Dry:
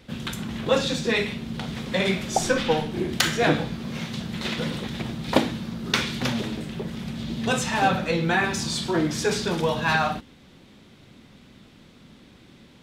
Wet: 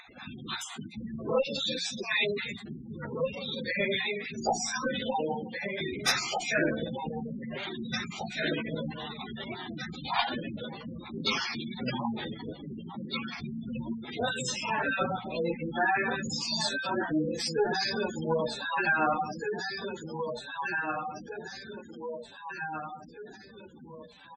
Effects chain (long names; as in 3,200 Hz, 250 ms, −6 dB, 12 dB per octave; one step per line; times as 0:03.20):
time-frequency cells dropped at random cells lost 35%
on a send: repeating echo 980 ms, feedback 42%, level −6.5 dB
on the sum: time stretch by phase vocoder 1.9×
tube saturation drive 17 dB, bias 0.8
gate on every frequency bin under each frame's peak −15 dB strong
dynamic equaliser 4,900 Hz, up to +7 dB, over −58 dBFS, Q 5.3
in parallel at −1 dB: downward compressor, threshold −39 dBFS, peak gain reduction 13.5 dB
on the sum: mains-hum notches 60/120/180 Hz
upward compression, threshold −50 dBFS
low-shelf EQ 180 Hz −11.5 dB
level +2.5 dB